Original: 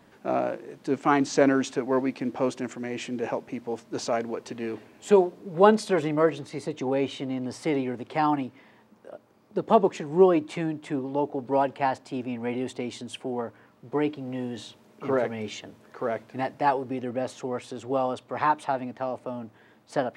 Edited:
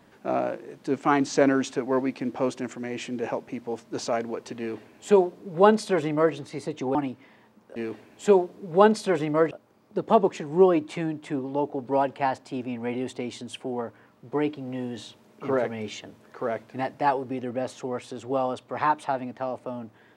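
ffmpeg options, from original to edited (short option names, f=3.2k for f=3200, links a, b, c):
-filter_complex "[0:a]asplit=4[a][b][c][d];[a]atrim=end=6.952[e];[b]atrim=start=8.298:end=9.112[f];[c]atrim=start=4.588:end=6.342[g];[d]atrim=start=9.108[h];[e][f]acrossfade=d=0.004:c1=hsin:c2=hsin[i];[i][g]acrossfade=d=0.004:c1=hsin:c2=hsin[j];[j][h]acrossfade=d=0.004:c1=hsin:c2=hsin"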